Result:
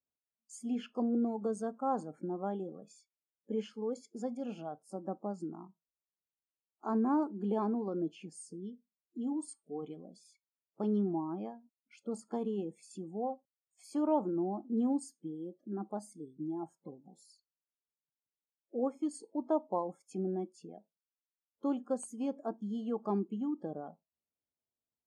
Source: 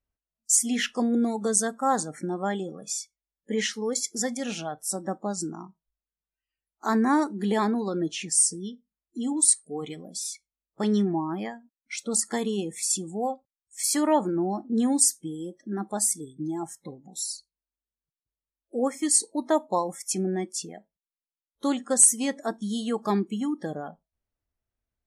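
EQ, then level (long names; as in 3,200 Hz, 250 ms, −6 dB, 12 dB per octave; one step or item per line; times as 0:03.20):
moving average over 23 samples
high-pass filter 170 Hz
−6.0 dB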